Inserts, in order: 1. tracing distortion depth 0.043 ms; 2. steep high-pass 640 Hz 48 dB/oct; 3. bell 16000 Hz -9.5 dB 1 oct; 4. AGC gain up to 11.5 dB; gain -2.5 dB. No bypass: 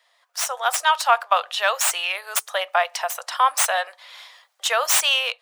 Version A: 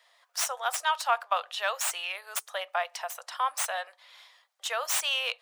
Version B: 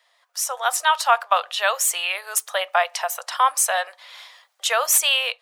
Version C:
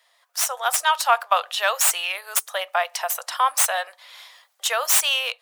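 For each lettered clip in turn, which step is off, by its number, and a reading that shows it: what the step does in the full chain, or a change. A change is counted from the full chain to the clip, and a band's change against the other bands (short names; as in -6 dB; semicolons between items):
4, loudness change -9.0 LU; 1, 8 kHz band +2.0 dB; 3, 8 kHz band +3.0 dB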